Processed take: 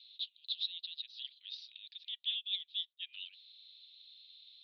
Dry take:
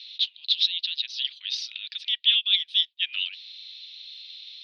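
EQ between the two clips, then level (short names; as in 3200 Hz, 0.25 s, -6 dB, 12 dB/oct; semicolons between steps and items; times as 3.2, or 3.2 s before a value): band-pass 3900 Hz, Q 3.3; air absorption 78 m; tilt -3.5 dB/oct; -5.0 dB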